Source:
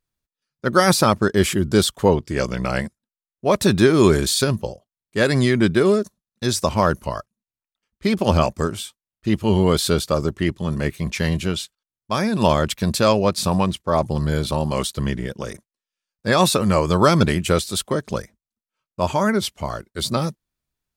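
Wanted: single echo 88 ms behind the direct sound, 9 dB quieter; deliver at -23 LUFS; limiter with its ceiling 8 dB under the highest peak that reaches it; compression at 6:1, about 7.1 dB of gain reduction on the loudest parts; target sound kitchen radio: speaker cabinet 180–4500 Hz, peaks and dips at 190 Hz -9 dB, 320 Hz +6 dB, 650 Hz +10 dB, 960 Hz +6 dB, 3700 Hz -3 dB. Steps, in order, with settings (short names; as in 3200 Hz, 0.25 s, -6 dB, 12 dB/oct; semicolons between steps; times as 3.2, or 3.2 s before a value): compressor 6:1, threshold -17 dBFS; limiter -14.5 dBFS; speaker cabinet 180–4500 Hz, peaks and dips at 190 Hz -9 dB, 320 Hz +6 dB, 650 Hz +10 dB, 960 Hz +6 dB, 3700 Hz -3 dB; echo 88 ms -9 dB; gain +2 dB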